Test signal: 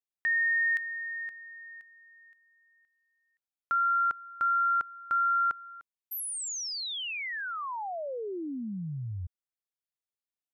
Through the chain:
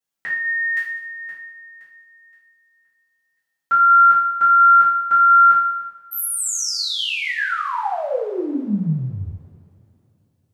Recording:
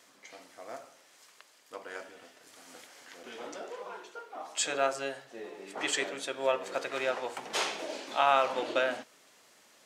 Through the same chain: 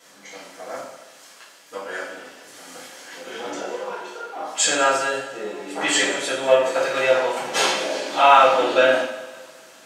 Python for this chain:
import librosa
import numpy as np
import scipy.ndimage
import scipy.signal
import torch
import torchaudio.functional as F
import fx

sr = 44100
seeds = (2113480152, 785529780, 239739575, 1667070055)

y = fx.echo_heads(x, sr, ms=65, heads='first and third', feedback_pct=50, wet_db=-19.0)
y = fx.rev_double_slope(y, sr, seeds[0], early_s=0.57, late_s=3.2, knee_db=-27, drr_db=-10.0)
y = y * librosa.db_to_amplitude(1.5)